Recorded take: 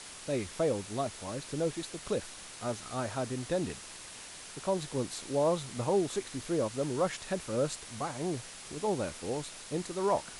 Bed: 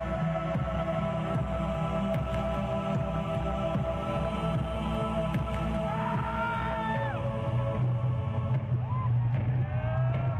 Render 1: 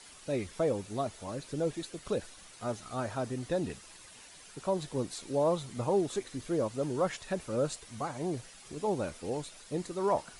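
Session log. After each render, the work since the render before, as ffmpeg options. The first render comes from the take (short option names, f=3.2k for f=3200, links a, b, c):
-af "afftdn=nr=9:nf=-47"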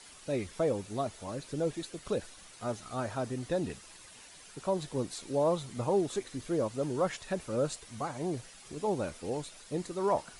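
-af anull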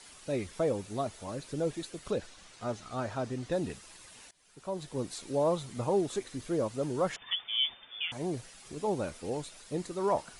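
-filter_complex "[0:a]asettb=1/sr,asplit=3[a][b][c];[a]atrim=end=2.114[d];[b]atrim=start=2.11:end=3.52,asetpts=PTS-STARTPTS,afade=t=in:d=0.004:c=qsin,afade=t=out:st=1.406:d=0.004:c=qsin,lowpass=7.3k[e];[c]atrim=start=3.516[f];[d][e]acrossfade=d=0.004:c1=hsin:c2=qsin[g];[g][f]acrossfade=d=0.004:c1=qsin:c2=hsin,asettb=1/sr,asplit=3[h][i][j];[h]atrim=end=7.164[k];[i]atrim=start=7.16:end=8.12,asetpts=PTS-STARTPTS,afade=t=in:d=0.004:c=qsin,afade=t=out:st=0.956:d=0.004:c=qsin,lowpass=f=3.1k:t=q:w=0.5098,lowpass=f=3.1k:t=q:w=0.6013,lowpass=f=3.1k:t=q:w=0.9,lowpass=f=3.1k:t=q:w=2.563,afreqshift=-3600[l];[j]atrim=start=8.116[m];[k][l]acrossfade=d=0.004:c1=hsin:c2=qsin[n];[n][m]acrossfade=d=0.004:c1=qsin:c2=hsin,asplit=2[o][p];[o]atrim=end=4.31,asetpts=PTS-STARTPTS,afade=t=out:st=4.306:d=0.004:c=hsin:silence=0.0794328[q];[p]atrim=start=4.31,asetpts=PTS-STARTPTS,afade=t=in:d=0.82:silence=0.0794328[r];[q][r]concat=n=2:v=0:a=1"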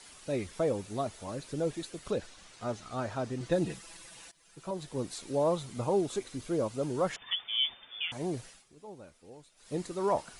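-filter_complex "[0:a]asettb=1/sr,asplit=3[a][b][c];[a]atrim=end=3.404[d];[b]atrim=start=3.4:end=4.71,asetpts=PTS-STARTPTS,afade=t=in:d=0.004:c=qsin,afade=t=out:st=1.306:d=0.004:c=qsin,aecho=1:1:6:0.77,atrim=end_sample=57771[e];[c]atrim=start=4.706[f];[d][e]acrossfade=d=0.004:c1=hsin:c2=qsin[g];[g][f]acrossfade=d=0.004:c1=qsin:c2=hsin,asettb=1/sr,asplit=3[h][i][j];[h]atrim=end=5.704[k];[i]atrim=start=5.7:end=6.89,asetpts=PTS-STARTPTS,afade=t=in:d=0.004:c=qsin,afade=t=out:st=1.186:d=0.004:c=qsin,bandreject=f=1.8k:w=11[l];[j]atrim=start=6.886[m];[k][l]acrossfade=d=0.004:c1=hsin:c2=qsin[n];[n][m]acrossfade=d=0.004:c1=qsin:c2=hsin,asplit=3[o][p][q];[o]atrim=end=8.66,asetpts=PTS-STARTPTS,afade=t=out:st=8.48:d=0.18:silence=0.158489[r];[p]atrim=start=8.66:end=9.56,asetpts=PTS-STARTPTS,volume=-16dB[s];[q]atrim=start=9.56,asetpts=PTS-STARTPTS,afade=t=in:d=0.18:silence=0.158489[t];[r][s][t]concat=n=3:v=0:a=1"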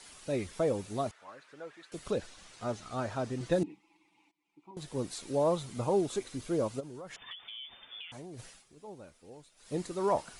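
-filter_complex "[0:a]asettb=1/sr,asplit=3[a][b][c];[a]atrim=end=1.114[d];[b]atrim=start=1.11:end=1.92,asetpts=PTS-STARTPTS,afade=t=in:d=0.004:c=qsin,afade=t=out:st=0.806:d=0.004:c=qsin,bandpass=f=1.5k:t=q:w=1.7[e];[c]atrim=start=1.916[f];[d][e]acrossfade=d=0.004:c1=hsin:c2=qsin[g];[g][f]acrossfade=d=0.004:c1=qsin:c2=hsin,asettb=1/sr,asplit=3[h][i][j];[h]atrim=end=3.634[k];[i]atrim=start=3.63:end=4.77,asetpts=PTS-STARTPTS,afade=t=in:d=0.004:c=qsin,afade=t=out:st=1.136:d=0.004:c=qsin,asplit=3[l][m][n];[l]bandpass=f=300:t=q:w=8,volume=0dB[o];[m]bandpass=f=870:t=q:w=8,volume=-6dB[p];[n]bandpass=f=2.24k:t=q:w=8,volume=-9dB[q];[o][p][q]amix=inputs=3:normalize=0[r];[j]atrim=start=4.766[s];[k][r]acrossfade=d=0.004:c1=hsin:c2=qsin[t];[t][s]acrossfade=d=0.004:c1=qsin:c2=hsin,asplit=3[u][v][w];[u]afade=t=out:st=6.79:d=0.02[x];[v]acompressor=threshold=-41dB:ratio=10:attack=3.2:release=140:knee=1:detection=peak,afade=t=in:st=6.79:d=0.02,afade=t=out:st=8.38:d=0.02[y];[w]afade=t=in:st=8.38:d=0.02[z];[x][y][z]amix=inputs=3:normalize=0"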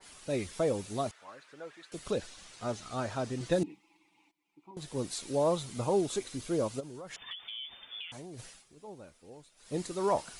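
-af "adynamicequalizer=threshold=0.00251:dfrequency=2400:dqfactor=0.7:tfrequency=2400:tqfactor=0.7:attack=5:release=100:ratio=0.375:range=2:mode=boostabove:tftype=highshelf"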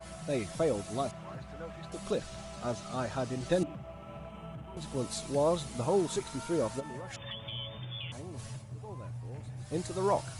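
-filter_complex "[1:a]volume=-15dB[a];[0:a][a]amix=inputs=2:normalize=0"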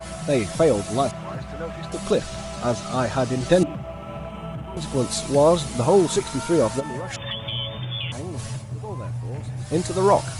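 -af "volume=11.5dB"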